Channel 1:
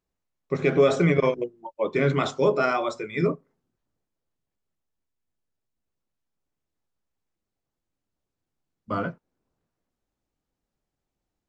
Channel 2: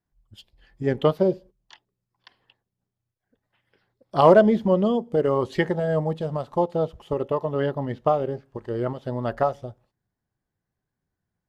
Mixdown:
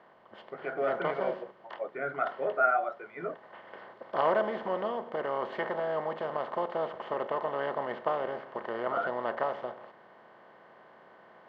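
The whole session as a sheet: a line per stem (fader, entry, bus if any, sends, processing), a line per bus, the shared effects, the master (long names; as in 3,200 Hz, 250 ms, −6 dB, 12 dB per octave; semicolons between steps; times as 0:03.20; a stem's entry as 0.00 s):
+1.5 dB, 0.00 s, no send, pair of resonant band-passes 1,000 Hz, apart 0.95 octaves
−9.0 dB, 0.00 s, no send, compressor on every frequency bin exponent 0.4; high-pass filter 1,400 Hz 6 dB per octave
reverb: not used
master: low-pass filter 2,300 Hz 12 dB per octave; speech leveller within 4 dB 2 s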